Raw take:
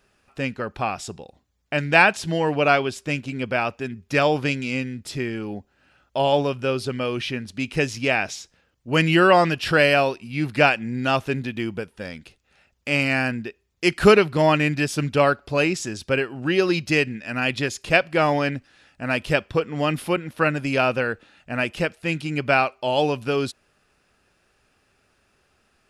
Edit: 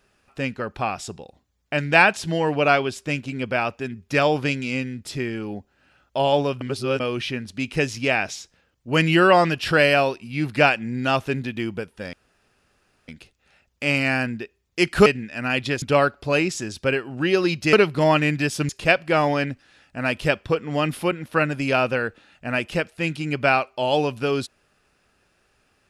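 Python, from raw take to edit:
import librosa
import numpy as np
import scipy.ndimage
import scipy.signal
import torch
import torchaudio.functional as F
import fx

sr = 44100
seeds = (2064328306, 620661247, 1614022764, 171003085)

y = fx.edit(x, sr, fx.reverse_span(start_s=6.61, length_s=0.39),
    fx.insert_room_tone(at_s=12.13, length_s=0.95),
    fx.swap(start_s=14.11, length_s=0.96, other_s=16.98, other_length_s=0.76), tone=tone)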